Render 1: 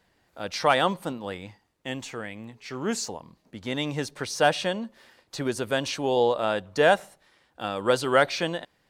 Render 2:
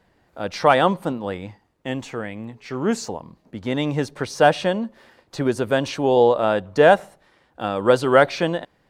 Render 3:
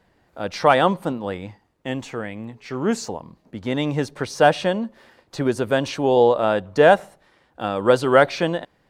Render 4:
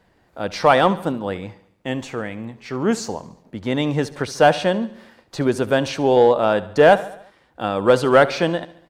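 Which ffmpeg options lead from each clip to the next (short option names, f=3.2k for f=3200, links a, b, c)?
-af "highshelf=f=2k:g=-10,volume=7.5dB"
-af anull
-filter_complex "[0:a]aecho=1:1:71|142|213|284|355:0.126|0.068|0.0367|0.0198|0.0107,asplit=2[a][b];[b]asoftclip=type=hard:threshold=-10dB,volume=-5dB[c];[a][c]amix=inputs=2:normalize=0,volume=-2dB"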